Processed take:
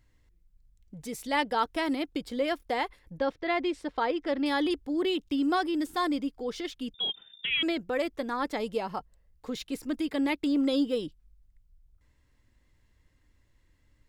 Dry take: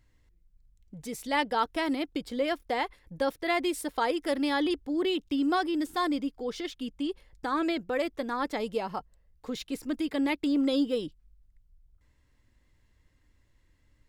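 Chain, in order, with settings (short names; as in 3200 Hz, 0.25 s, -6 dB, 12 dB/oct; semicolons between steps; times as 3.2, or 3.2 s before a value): 3.17–4.46 air absorption 150 m; 6.94–7.63 inverted band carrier 3600 Hz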